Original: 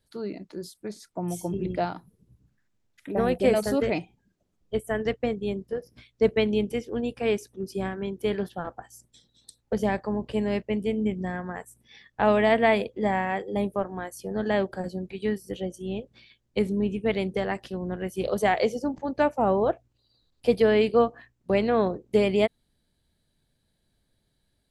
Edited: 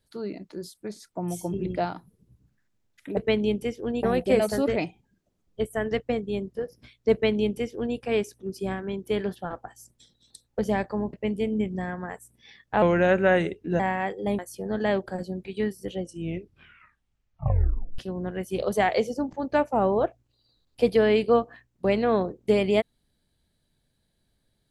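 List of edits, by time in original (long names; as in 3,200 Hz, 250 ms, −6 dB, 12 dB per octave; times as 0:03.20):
0:06.26–0:07.12: duplicate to 0:03.17
0:10.27–0:10.59: remove
0:12.28–0:13.09: play speed 83%
0:13.68–0:14.04: remove
0:15.65: tape stop 1.99 s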